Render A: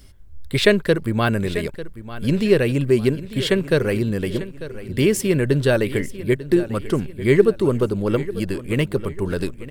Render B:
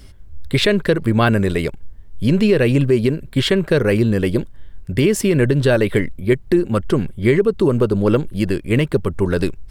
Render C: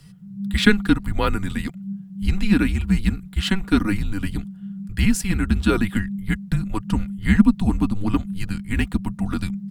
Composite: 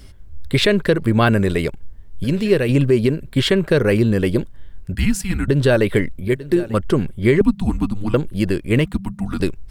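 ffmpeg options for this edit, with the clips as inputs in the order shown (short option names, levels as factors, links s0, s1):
-filter_complex "[0:a]asplit=2[s0][s1];[2:a]asplit=3[s2][s3][s4];[1:a]asplit=6[s5][s6][s7][s8][s9][s10];[s5]atrim=end=2.242[s11];[s0]atrim=start=2.238:end=2.692[s12];[s6]atrim=start=2.688:end=4.952[s13];[s2]atrim=start=4.948:end=5.482[s14];[s7]atrim=start=5.478:end=6.282[s15];[s1]atrim=start=6.278:end=6.742[s16];[s8]atrim=start=6.738:end=7.412[s17];[s3]atrim=start=7.408:end=8.142[s18];[s9]atrim=start=8.138:end=8.852[s19];[s4]atrim=start=8.848:end=9.402[s20];[s10]atrim=start=9.398[s21];[s11][s12]acrossfade=d=0.004:c1=hsin:c2=hsin[s22];[s22][s13]acrossfade=d=0.004:c1=hsin:c2=hsin[s23];[s23][s14]acrossfade=d=0.004:c1=hsin:c2=hsin[s24];[s24][s15]acrossfade=d=0.004:c1=hsin:c2=hsin[s25];[s25][s16]acrossfade=d=0.004:c1=hsin:c2=hsin[s26];[s26][s17]acrossfade=d=0.004:c1=hsin:c2=hsin[s27];[s27][s18]acrossfade=d=0.004:c1=hsin:c2=hsin[s28];[s28][s19]acrossfade=d=0.004:c1=hsin:c2=hsin[s29];[s29][s20]acrossfade=d=0.004:c1=hsin:c2=hsin[s30];[s30][s21]acrossfade=d=0.004:c1=hsin:c2=hsin"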